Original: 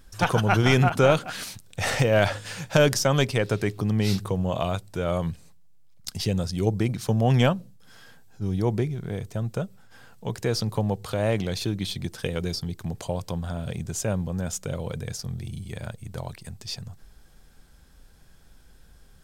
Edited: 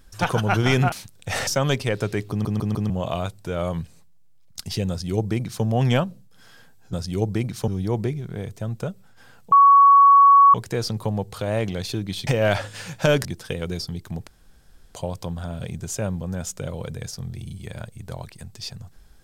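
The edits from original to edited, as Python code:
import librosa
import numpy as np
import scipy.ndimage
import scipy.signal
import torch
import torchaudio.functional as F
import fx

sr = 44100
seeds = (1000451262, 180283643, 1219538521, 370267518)

y = fx.edit(x, sr, fx.cut(start_s=0.92, length_s=0.51),
    fx.move(start_s=1.98, length_s=0.98, to_s=11.99),
    fx.stutter_over(start_s=3.79, slice_s=0.15, count=4),
    fx.duplicate(start_s=6.38, length_s=0.75, to_s=8.42),
    fx.insert_tone(at_s=10.26, length_s=1.02, hz=1120.0, db=-8.5),
    fx.insert_room_tone(at_s=13.01, length_s=0.68), tone=tone)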